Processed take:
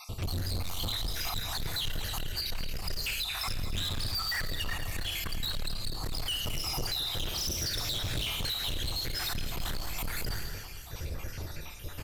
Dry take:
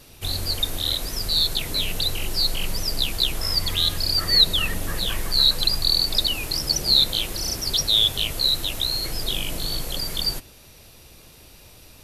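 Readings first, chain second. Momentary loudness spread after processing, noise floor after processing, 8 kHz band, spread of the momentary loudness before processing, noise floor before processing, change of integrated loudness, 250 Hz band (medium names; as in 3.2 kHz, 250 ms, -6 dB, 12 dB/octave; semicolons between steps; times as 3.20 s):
9 LU, -42 dBFS, -8.0 dB, 9 LU, -48 dBFS, -12.5 dB, -7.0 dB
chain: random holes in the spectrogram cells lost 61%; bass shelf 240 Hz +5.5 dB; Schroeder reverb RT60 0.67 s, combs from 26 ms, DRR 6 dB; compression 6:1, threshold -31 dBFS, peak gain reduction 16.5 dB; fifteen-band graphic EQ 100 Hz +5 dB, 250 Hz -4 dB, 1.6 kHz +5 dB, 4 kHz -4 dB, 10 kHz -9 dB; hard clipper -38.5 dBFS, distortion -5 dB; frequency-shifting echo 219 ms, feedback 58%, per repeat -32 Hz, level -12 dB; trim +8.5 dB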